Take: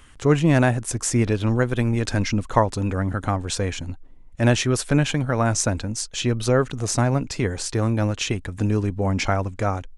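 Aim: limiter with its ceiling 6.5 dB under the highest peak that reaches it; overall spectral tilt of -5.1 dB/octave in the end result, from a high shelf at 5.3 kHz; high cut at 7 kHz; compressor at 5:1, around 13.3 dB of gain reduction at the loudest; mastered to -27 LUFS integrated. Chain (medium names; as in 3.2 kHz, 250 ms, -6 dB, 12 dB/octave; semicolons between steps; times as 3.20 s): low-pass 7 kHz; treble shelf 5.3 kHz -4.5 dB; compression 5:1, threshold -27 dBFS; trim +6 dB; peak limiter -15.5 dBFS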